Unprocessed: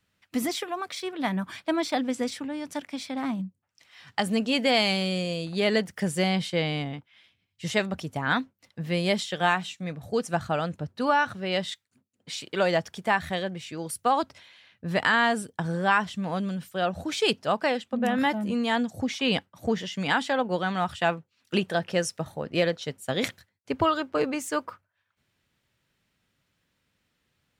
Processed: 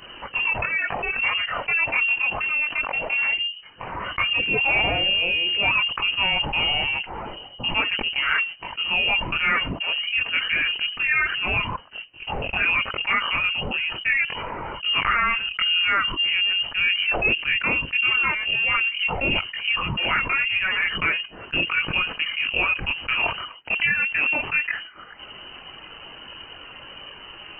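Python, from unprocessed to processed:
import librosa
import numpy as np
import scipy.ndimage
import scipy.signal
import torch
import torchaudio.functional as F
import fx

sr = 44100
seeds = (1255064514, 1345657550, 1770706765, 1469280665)

p1 = fx.chorus_voices(x, sr, voices=4, hz=0.66, base_ms=21, depth_ms=2.3, mix_pct=60)
p2 = np.sign(p1) * np.maximum(np.abs(p1) - 10.0 ** (-40.0 / 20.0), 0.0)
p3 = p1 + F.gain(torch.from_numpy(p2), -6.0).numpy()
p4 = fx.freq_invert(p3, sr, carrier_hz=3000)
p5 = fx.env_flatten(p4, sr, amount_pct=70)
y = F.gain(torch.from_numpy(p5), -3.5).numpy()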